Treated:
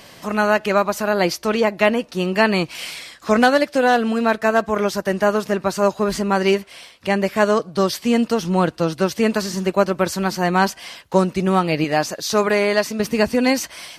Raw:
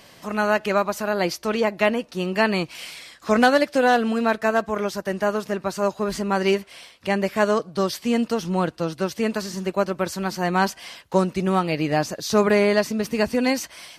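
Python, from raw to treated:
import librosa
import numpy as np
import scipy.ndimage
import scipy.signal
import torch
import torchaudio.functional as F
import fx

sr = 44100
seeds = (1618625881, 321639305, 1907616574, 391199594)

p1 = fx.low_shelf(x, sr, hz=340.0, db=-8.5, at=(11.84, 13.0))
p2 = fx.rider(p1, sr, range_db=4, speed_s=0.5)
p3 = p1 + (p2 * 10.0 ** (2.5 / 20.0))
y = p3 * 10.0 ** (-3.5 / 20.0)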